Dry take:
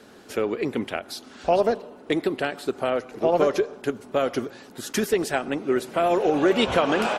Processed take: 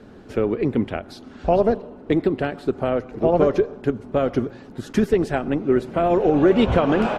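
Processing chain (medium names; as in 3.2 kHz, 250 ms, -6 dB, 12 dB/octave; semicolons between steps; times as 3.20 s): RIAA curve playback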